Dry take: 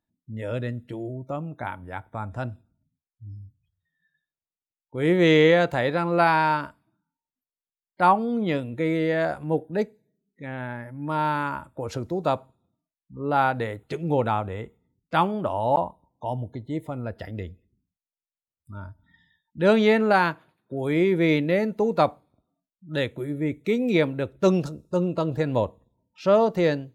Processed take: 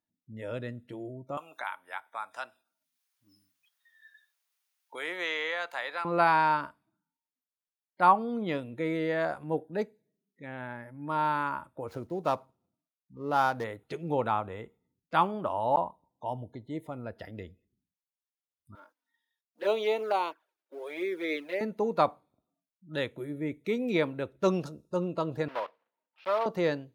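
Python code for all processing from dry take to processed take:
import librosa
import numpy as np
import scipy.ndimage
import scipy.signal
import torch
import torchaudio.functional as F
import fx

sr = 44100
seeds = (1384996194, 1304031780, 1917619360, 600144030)

y = fx.chain(x, sr, fx.highpass(hz=1000.0, slope=12),
    fx.band_squash(depth_pct=70), at=(1.37, 6.05))
y = fx.chain(y, sr, fx.median_filter(points=15),
    fx.high_shelf(hz=7600.0, db=5.5), at=(11.88, 13.64))
y = fx.chain(y, sr, fx.law_mismatch(coded='A'),
    fx.highpass(hz=350.0, slope=24),
    fx.env_flanger(rest_ms=4.3, full_db=-18.0), at=(18.75, 21.61))
y = fx.chain(y, sr, fx.block_float(bits=3),
    fx.highpass(hz=670.0, slope=12),
    fx.air_absorb(metres=400.0), at=(25.48, 26.46))
y = fx.low_shelf(y, sr, hz=110.0, db=-11.0)
y = fx.notch(y, sr, hz=7600.0, q=11.0)
y = fx.dynamic_eq(y, sr, hz=1100.0, q=2.3, threshold_db=-39.0, ratio=4.0, max_db=5)
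y = y * librosa.db_to_amplitude(-5.5)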